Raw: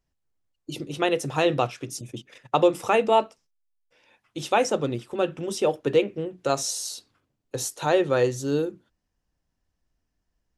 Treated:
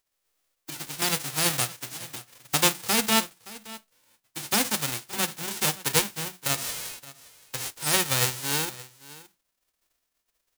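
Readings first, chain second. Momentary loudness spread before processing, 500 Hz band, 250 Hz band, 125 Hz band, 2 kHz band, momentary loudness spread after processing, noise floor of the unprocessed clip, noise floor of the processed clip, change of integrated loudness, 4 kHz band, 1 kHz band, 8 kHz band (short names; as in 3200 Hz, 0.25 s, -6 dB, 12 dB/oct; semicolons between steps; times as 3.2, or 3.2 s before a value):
15 LU, -13.0 dB, -5.5 dB, -2.0 dB, +3.0 dB, 19 LU, -79 dBFS, -79 dBFS, -0.5 dB, +7.0 dB, -5.5 dB, +7.5 dB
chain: spectral whitening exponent 0.1; echo 0.571 s -19 dB; gain -3 dB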